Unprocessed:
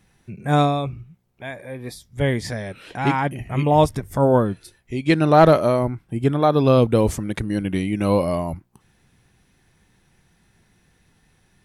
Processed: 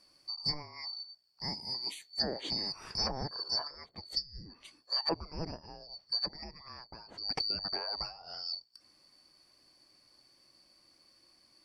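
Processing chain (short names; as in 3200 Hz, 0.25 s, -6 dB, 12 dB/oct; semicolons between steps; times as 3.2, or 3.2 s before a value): four-band scrambler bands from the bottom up 2341; treble ducked by the level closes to 730 Hz, closed at -14 dBFS; gain -5 dB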